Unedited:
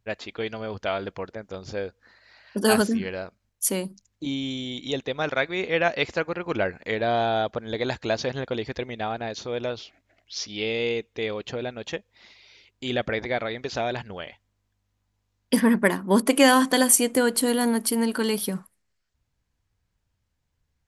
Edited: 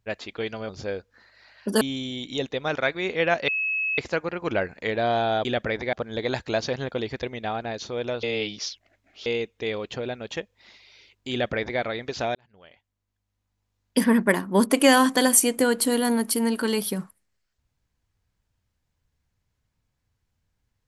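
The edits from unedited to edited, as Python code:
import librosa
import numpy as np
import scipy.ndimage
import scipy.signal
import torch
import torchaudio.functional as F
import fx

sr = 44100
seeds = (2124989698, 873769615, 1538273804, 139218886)

y = fx.edit(x, sr, fx.cut(start_s=0.69, length_s=0.89),
    fx.cut(start_s=2.7, length_s=1.65),
    fx.insert_tone(at_s=6.02, length_s=0.5, hz=2580.0, db=-23.0),
    fx.reverse_span(start_s=9.79, length_s=1.03),
    fx.duplicate(start_s=12.88, length_s=0.48, to_s=7.49),
    fx.fade_in_span(start_s=13.91, length_s=1.74), tone=tone)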